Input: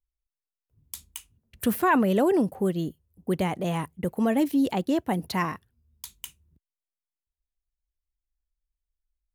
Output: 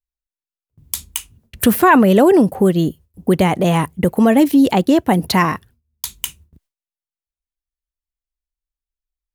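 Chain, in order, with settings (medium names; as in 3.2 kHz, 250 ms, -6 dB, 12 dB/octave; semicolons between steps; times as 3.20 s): gate with hold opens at -57 dBFS; in parallel at +2.5 dB: compression, threshold -30 dBFS, peak gain reduction 12.5 dB; on the sum: trim +8 dB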